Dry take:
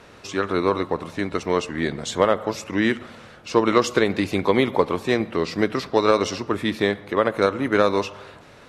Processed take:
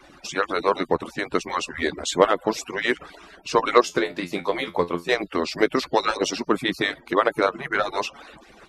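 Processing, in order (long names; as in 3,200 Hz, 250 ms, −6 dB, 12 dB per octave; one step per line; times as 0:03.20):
harmonic-percussive split with one part muted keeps percussive
0:03.81–0:05.09: tuned comb filter 86 Hz, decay 0.19 s, harmonics all, mix 80%
0:07.41–0:07.90: high-shelf EQ 4,200 Hz −9 dB
level +3 dB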